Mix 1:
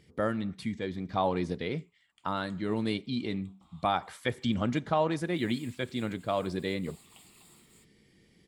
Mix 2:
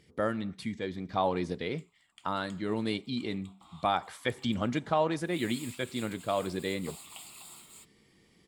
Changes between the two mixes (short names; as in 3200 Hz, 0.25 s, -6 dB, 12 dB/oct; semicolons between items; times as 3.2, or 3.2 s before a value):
background +9.0 dB; master: add tone controls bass -3 dB, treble +1 dB